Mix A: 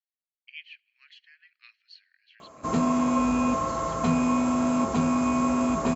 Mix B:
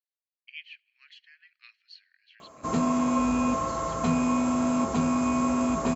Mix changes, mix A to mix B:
first sound: send -9.5 dB; master: add treble shelf 8.9 kHz +5.5 dB

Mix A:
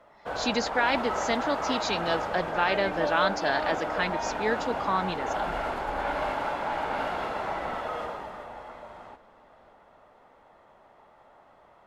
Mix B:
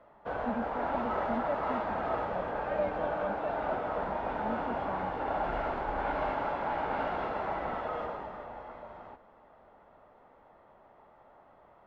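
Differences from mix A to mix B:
speech: add two resonant band-passes 370 Hz, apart 1.4 oct; second sound -5.5 dB; master: add tape spacing loss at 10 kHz 26 dB

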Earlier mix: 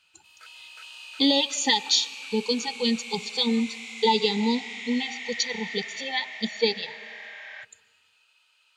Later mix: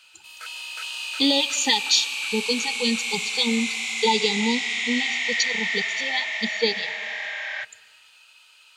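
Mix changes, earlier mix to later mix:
background +10.0 dB; master: add treble shelf 5.2 kHz +5.5 dB

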